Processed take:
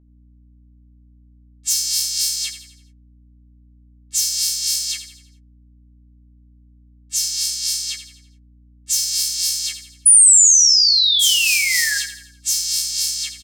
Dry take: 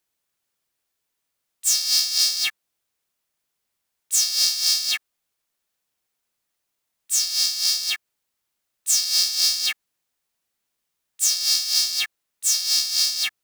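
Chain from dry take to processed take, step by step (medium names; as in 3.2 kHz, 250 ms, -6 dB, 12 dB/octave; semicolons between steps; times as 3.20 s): spectral levelling over time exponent 0.6; gate -43 dBFS, range -32 dB; painted sound fall, 10.05–11.98 s, 1.6–10 kHz -10 dBFS; differentiator; level-controlled noise filter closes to 1.3 kHz, open at -13.5 dBFS; hum 60 Hz, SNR 32 dB; doubling 13 ms -9 dB; feedback delay 84 ms, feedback 46%, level -11 dB; trim -1 dB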